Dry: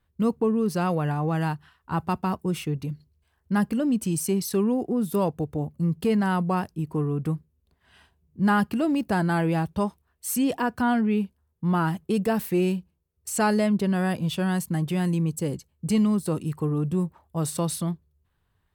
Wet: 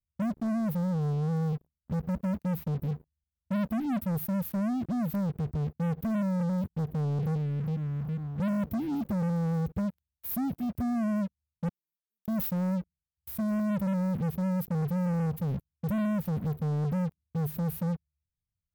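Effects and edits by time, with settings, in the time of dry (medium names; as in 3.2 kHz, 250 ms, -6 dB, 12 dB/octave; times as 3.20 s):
1.52–3.97 s: comb 4.4 ms, depth 53%
6.81–7.35 s: echo throw 410 ms, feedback 50%, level -6.5 dB
11.68–12.28 s: ladder high-pass 1.1 kHz, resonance 50%
whole clip: inverse Chebyshev band-stop 630–6900 Hz, stop band 60 dB; dynamic bell 120 Hz, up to -4 dB, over -39 dBFS, Q 1.7; waveshaping leveller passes 5; trim -8 dB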